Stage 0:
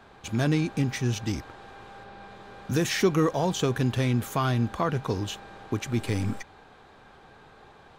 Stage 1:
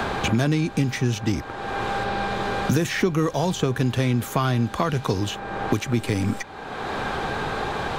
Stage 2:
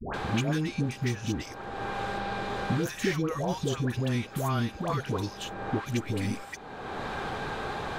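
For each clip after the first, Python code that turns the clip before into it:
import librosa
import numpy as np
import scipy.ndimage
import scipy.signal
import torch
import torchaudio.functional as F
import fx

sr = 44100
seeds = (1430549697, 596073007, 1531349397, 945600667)

y1 = fx.band_squash(x, sr, depth_pct=100)
y1 = y1 * librosa.db_to_amplitude(3.5)
y2 = fx.dispersion(y1, sr, late='highs', ms=141.0, hz=770.0)
y2 = y2 * librosa.db_to_amplitude(-7.0)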